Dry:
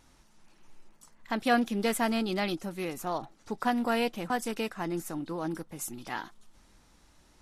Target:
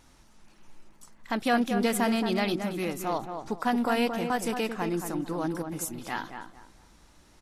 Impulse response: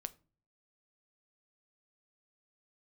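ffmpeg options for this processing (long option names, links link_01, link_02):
-filter_complex "[0:a]asplit=2[link_01][link_02];[link_02]alimiter=limit=-22dB:level=0:latency=1:release=112,volume=2dB[link_03];[link_01][link_03]amix=inputs=2:normalize=0,asplit=2[link_04][link_05];[link_05]adelay=224,lowpass=frequency=1800:poles=1,volume=-6.5dB,asplit=2[link_06][link_07];[link_07]adelay=224,lowpass=frequency=1800:poles=1,volume=0.28,asplit=2[link_08][link_09];[link_09]adelay=224,lowpass=frequency=1800:poles=1,volume=0.28,asplit=2[link_10][link_11];[link_11]adelay=224,lowpass=frequency=1800:poles=1,volume=0.28[link_12];[link_04][link_06][link_08][link_10][link_12]amix=inputs=5:normalize=0,volume=-4dB"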